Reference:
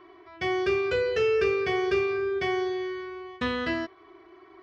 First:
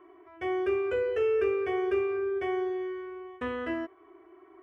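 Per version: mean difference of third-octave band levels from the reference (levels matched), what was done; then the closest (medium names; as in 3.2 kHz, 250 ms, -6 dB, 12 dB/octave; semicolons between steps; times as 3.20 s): 4.0 dB: FFT filter 100 Hz 0 dB, 180 Hz -16 dB, 270 Hz +6 dB, 570 Hz +5 dB, 1.4 kHz +2 dB, 3 kHz -3 dB, 4.3 kHz -20 dB, 9.2 kHz +4 dB; trim -7.5 dB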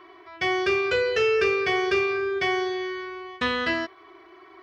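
2.5 dB: bass shelf 500 Hz -9 dB; trim +6.5 dB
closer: second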